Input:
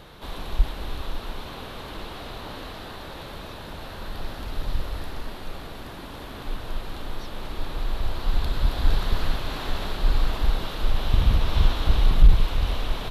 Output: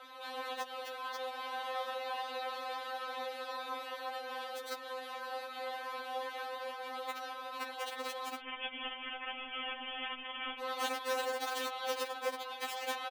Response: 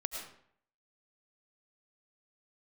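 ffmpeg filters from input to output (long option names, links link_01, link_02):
-filter_complex "[0:a]acompressor=threshold=-22dB:ratio=4,aeval=exprs='val(0)*sin(2*PI*90*n/s)':channel_layout=same,flanger=delay=18.5:depth=6.3:speed=0.27,aecho=1:1:334|668|1002|1336:0.178|0.0729|0.0299|0.0123,aeval=exprs='(mod(15.8*val(0)+1,2)-1)/15.8':channel_layout=same,alimiter=level_in=5.5dB:limit=-24dB:level=0:latency=1:release=62,volume=-5.5dB,highpass=frequency=470:width=0.5412,highpass=frequency=470:width=1.3066,asettb=1/sr,asplit=3[link_01][link_02][link_03];[link_01]atrim=end=8.394[link_04];[link_02]atrim=start=8.39:end=10.6,asetpts=PTS-STARTPTS,afade=type=in:duration=0.004:curve=qsin,afade=type=out:start_time=2.206:duration=0.004:curve=qsin,lowpass=frequency=3200:width_type=q:width=0.5098,lowpass=frequency=3200:width_type=q:width=0.6013,lowpass=frequency=3200:width_type=q:width=0.9,lowpass=frequency=3200:width_type=q:width=2.563,afreqshift=-3800[link_05];[link_03]atrim=start=10.596[link_06];[link_04][link_05]acrossfade=duration=0.004:curve1=hsin:curve2=qsin[link_07];[link_07][link_06]acrossfade=duration=0.004:curve1=qsin:curve2=hsin,highshelf=frequency=2800:gain=-11,afftfilt=real='re*3.46*eq(mod(b,12),0)':imag='im*3.46*eq(mod(b,12),0)':win_size=2048:overlap=0.75,volume=11dB"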